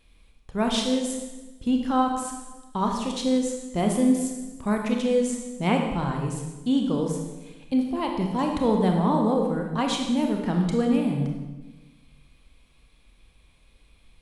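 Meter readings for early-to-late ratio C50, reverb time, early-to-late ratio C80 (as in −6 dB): 3.5 dB, 1.2 s, 6.0 dB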